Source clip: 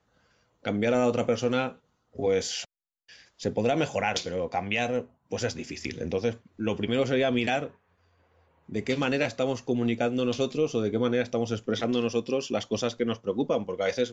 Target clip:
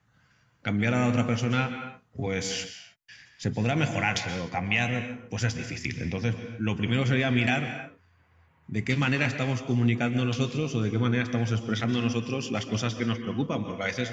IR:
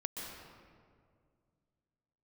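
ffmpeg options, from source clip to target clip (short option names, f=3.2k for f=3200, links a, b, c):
-filter_complex "[0:a]equalizer=f=125:t=o:w=1:g=12,equalizer=f=500:t=o:w=1:g=-10,equalizer=f=2k:t=o:w=1:g=5,equalizer=f=4k:t=o:w=1:g=-3,asplit=2[a][b];[1:a]atrim=start_sample=2205,afade=t=out:st=0.36:d=0.01,atrim=end_sample=16317,lowshelf=f=170:g=-10.5[c];[b][c]afir=irnorm=-1:irlink=0,volume=-0.5dB[d];[a][d]amix=inputs=2:normalize=0,volume=-3.5dB"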